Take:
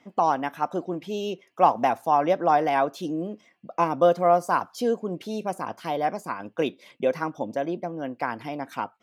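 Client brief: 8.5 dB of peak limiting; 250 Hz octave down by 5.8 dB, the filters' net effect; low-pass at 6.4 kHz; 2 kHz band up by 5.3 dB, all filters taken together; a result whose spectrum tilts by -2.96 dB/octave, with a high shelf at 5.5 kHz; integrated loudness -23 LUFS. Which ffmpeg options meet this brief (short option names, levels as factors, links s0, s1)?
-af "lowpass=6400,equalizer=f=250:t=o:g=-8.5,equalizer=f=2000:t=o:g=8.5,highshelf=f=5500:g=-9,volume=1.88,alimiter=limit=0.398:level=0:latency=1"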